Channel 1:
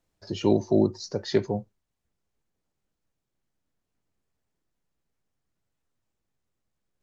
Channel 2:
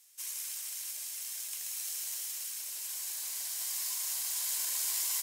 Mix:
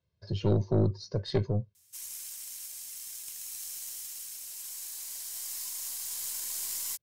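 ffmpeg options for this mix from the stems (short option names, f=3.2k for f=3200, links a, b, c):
-filter_complex "[0:a]lowpass=f=4.4k:w=0.5412,lowpass=f=4.4k:w=1.3066,aemphasis=mode=production:type=cd,aecho=1:1:1.9:0.83,volume=-7.5dB[a];[1:a]adelay=1750,volume=-4dB[b];[a][b]amix=inputs=2:normalize=0,highpass=f=76:w=0.5412,highpass=f=76:w=1.3066,bass=f=250:g=14,treble=f=4k:g=4,aeval=exprs='(tanh(7.08*val(0)+0.5)-tanh(0.5))/7.08':c=same"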